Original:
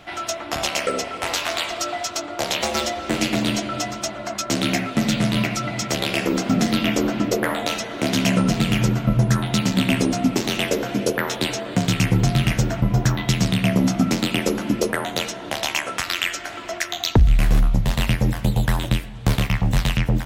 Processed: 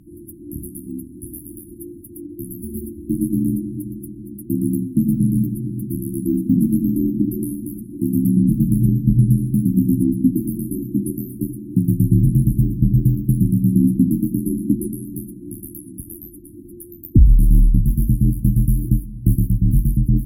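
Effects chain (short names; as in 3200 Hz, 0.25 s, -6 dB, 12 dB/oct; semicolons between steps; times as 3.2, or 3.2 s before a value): brick-wall FIR band-stop 360–9700 Hz; resonator 520 Hz, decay 0.18 s, harmonics all, mix 30%; gain +7 dB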